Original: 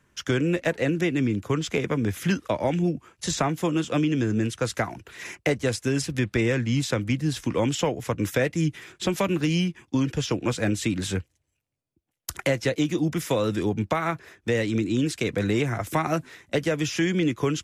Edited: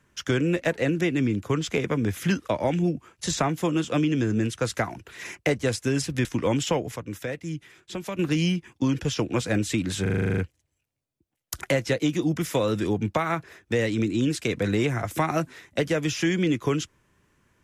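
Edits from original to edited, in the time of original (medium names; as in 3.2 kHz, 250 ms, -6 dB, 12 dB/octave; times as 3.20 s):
6.25–7.37 s: delete
8.08–9.31 s: gain -8.5 dB
11.14 s: stutter 0.04 s, 10 plays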